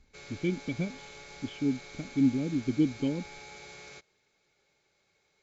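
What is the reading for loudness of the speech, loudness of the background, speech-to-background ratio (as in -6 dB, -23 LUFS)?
-31.0 LUFS, -46.5 LUFS, 15.5 dB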